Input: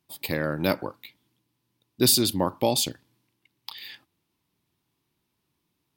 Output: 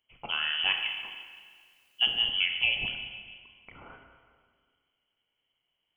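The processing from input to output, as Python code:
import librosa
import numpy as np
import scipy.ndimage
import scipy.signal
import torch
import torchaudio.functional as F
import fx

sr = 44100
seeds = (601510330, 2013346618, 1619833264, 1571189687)

y = fx.rev_schroeder(x, sr, rt60_s=1.8, comb_ms=29, drr_db=4.0)
y = fx.freq_invert(y, sr, carrier_hz=3200)
y = fx.dmg_noise_colour(y, sr, seeds[0], colour='white', level_db=-68.0, at=(0.75, 2.29), fade=0.02)
y = y * librosa.db_to_amplitude(-4.0)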